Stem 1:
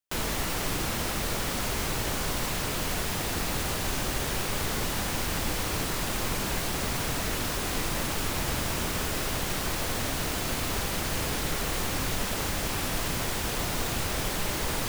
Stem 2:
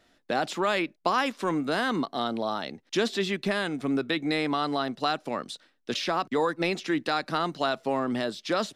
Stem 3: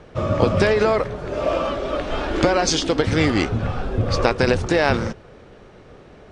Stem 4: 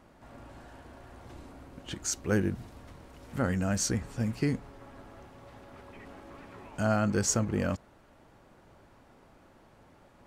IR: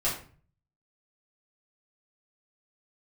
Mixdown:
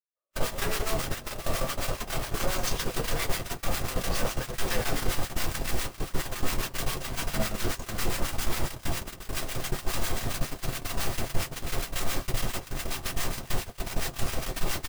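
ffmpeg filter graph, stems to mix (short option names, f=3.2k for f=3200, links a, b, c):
-filter_complex "[0:a]volume=34dB,asoftclip=hard,volume=-34dB,adelay=200,volume=1.5dB,asplit=2[a][b];[b]volume=-3.5dB[c];[1:a]aeval=exprs='val(0)*sgn(sin(2*PI*770*n/s))':c=same,volume=-11.5dB[d];[2:a]highpass=f=460:w=0.5412,highpass=f=460:w=1.3066,acompressor=threshold=-25dB:ratio=6,volume=-5.5dB,asplit=2[e][f];[f]volume=-14.5dB[g];[3:a]lowpass=7.8k,adelay=500,volume=-8dB,asplit=2[h][i];[i]volume=-16dB[j];[4:a]atrim=start_sample=2205[k];[c][g][j]amix=inputs=3:normalize=0[l];[l][k]afir=irnorm=-1:irlink=0[m];[a][d][e][h][m]amix=inputs=5:normalize=0,agate=range=-59dB:threshold=-22dB:ratio=16:detection=peak,acrossover=split=1000[n][o];[n]aeval=exprs='val(0)*(1-0.7/2+0.7/2*cos(2*PI*7.3*n/s))':c=same[p];[o]aeval=exprs='val(0)*(1-0.7/2-0.7/2*cos(2*PI*7.3*n/s))':c=same[q];[p][q]amix=inputs=2:normalize=0"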